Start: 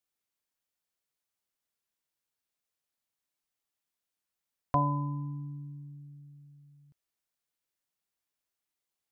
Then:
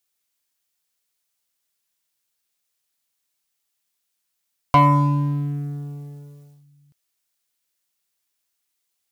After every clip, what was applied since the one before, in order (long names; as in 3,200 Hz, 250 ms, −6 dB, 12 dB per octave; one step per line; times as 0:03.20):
high-shelf EQ 2,000 Hz +9.5 dB
leveller curve on the samples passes 2
level +7 dB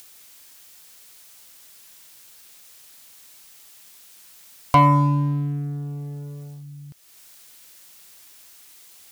upward compression, threshold −26 dBFS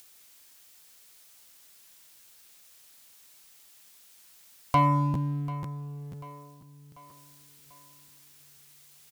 repeating echo 741 ms, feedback 52%, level −18.5 dB
regular buffer underruns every 0.49 s, samples 512, repeat, from 0:00.72
level −7.5 dB